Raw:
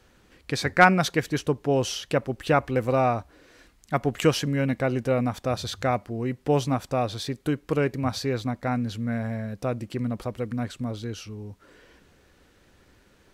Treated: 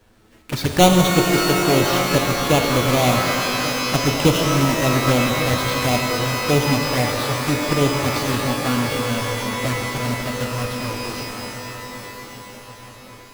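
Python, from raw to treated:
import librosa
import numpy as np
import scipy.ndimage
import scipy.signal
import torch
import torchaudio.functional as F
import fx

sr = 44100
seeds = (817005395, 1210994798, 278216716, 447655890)

y = fx.halfwave_hold(x, sr)
y = fx.env_flanger(y, sr, rest_ms=9.9, full_db=-16.0)
y = fx.echo_feedback(y, sr, ms=1137, feedback_pct=51, wet_db=-14)
y = fx.rev_shimmer(y, sr, seeds[0], rt60_s=3.2, semitones=12, shimmer_db=-2, drr_db=3.0)
y = y * 10.0 ** (1.0 / 20.0)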